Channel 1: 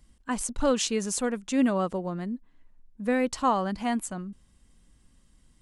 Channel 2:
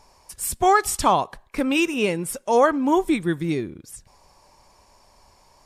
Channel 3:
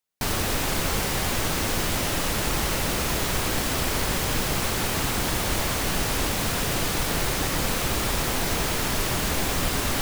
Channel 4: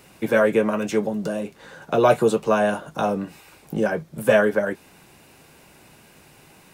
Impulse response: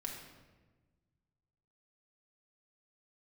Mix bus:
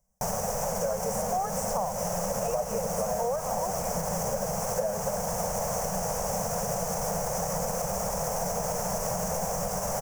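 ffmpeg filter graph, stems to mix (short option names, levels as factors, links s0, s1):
-filter_complex "[0:a]volume=0.112[s0];[1:a]adelay=700,volume=0.178[s1];[2:a]alimiter=limit=0.0794:level=0:latency=1:release=188,volume=0.891[s2];[3:a]adelay=500,volume=0.126[s3];[s0][s1][s2][s3]amix=inputs=4:normalize=0,firequalizer=gain_entry='entry(100,0);entry(190,12);entry(290,-24);entry(480,13);entry(690,15);entry(1200,2);entry(1800,-4);entry(3900,-18);entry(5800,11);entry(8900,4)':delay=0.05:min_phase=1,acompressor=threshold=0.0501:ratio=6"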